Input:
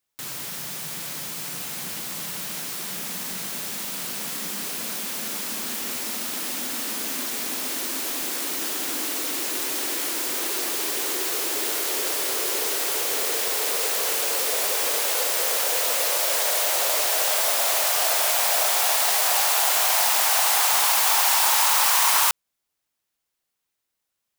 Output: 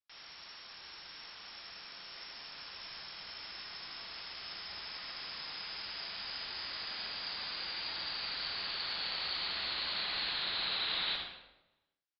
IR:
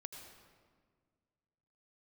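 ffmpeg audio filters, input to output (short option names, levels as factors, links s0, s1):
-filter_complex "[0:a]lowpass=f=2500:t=q:w=0.5098,lowpass=f=2500:t=q:w=0.6013,lowpass=f=2500:t=q:w=0.9,lowpass=f=2500:t=q:w=2.563,afreqshift=-2900,bandreject=f=60:t=h:w=6,bandreject=f=120:t=h:w=6,bandreject=f=180:t=h:w=6,bandreject=f=240:t=h:w=6,bandreject=f=300:t=h:w=6,bandreject=f=360:t=h:w=6,asplit=2[s0][s1];[s1]adelay=163.3,volume=0.355,highshelf=f=4000:g=-3.67[s2];[s0][s2]amix=inputs=2:normalize=0[s3];[1:a]atrim=start_sample=2205[s4];[s3][s4]afir=irnorm=-1:irlink=0,asetrate=88200,aresample=44100,volume=0.501"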